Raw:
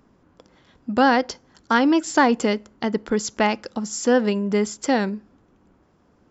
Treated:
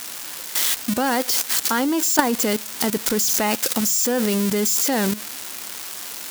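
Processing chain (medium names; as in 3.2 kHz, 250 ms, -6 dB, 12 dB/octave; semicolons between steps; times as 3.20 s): zero-crossing glitches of -12.5 dBFS; level held to a coarse grid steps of 13 dB; trim +6 dB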